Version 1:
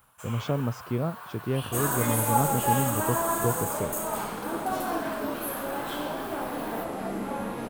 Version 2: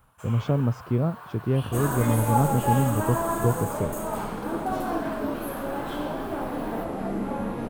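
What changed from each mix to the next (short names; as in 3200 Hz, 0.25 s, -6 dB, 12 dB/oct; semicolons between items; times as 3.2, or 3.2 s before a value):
master: add tilt -2 dB/oct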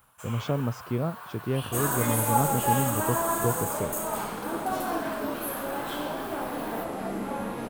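master: add tilt +2 dB/oct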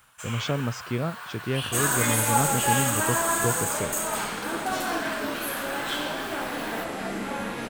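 master: add band shelf 3500 Hz +9 dB 2.8 oct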